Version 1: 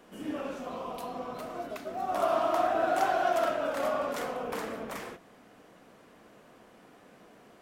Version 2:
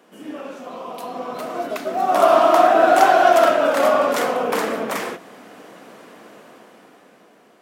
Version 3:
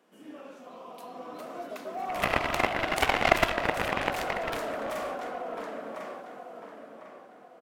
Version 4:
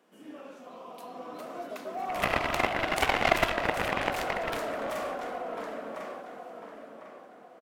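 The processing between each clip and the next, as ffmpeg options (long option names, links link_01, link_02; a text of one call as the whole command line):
ffmpeg -i in.wav -af "highpass=200,dynaudnorm=framelen=210:gausssize=13:maxgain=11.5dB,volume=3dB" out.wav
ffmpeg -i in.wav -filter_complex "[0:a]asplit=2[link_01][link_02];[link_02]adelay=1049,lowpass=frequency=2500:poles=1,volume=-4dB,asplit=2[link_03][link_04];[link_04]adelay=1049,lowpass=frequency=2500:poles=1,volume=0.37,asplit=2[link_05][link_06];[link_06]adelay=1049,lowpass=frequency=2500:poles=1,volume=0.37,asplit=2[link_07][link_08];[link_08]adelay=1049,lowpass=frequency=2500:poles=1,volume=0.37,asplit=2[link_09][link_10];[link_10]adelay=1049,lowpass=frequency=2500:poles=1,volume=0.37[link_11];[link_01][link_03][link_05][link_07][link_09][link_11]amix=inputs=6:normalize=0,aeval=exprs='0.891*(cos(1*acos(clip(val(0)/0.891,-1,1)))-cos(1*PI/2))+0.398*(cos(3*acos(clip(val(0)/0.891,-1,1)))-cos(3*PI/2))':channel_layout=same,volume=-3dB" out.wav
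ffmpeg -i in.wav -af "asoftclip=type=tanh:threshold=-6.5dB,aecho=1:1:760|1520|2280:0.075|0.0345|0.0159" out.wav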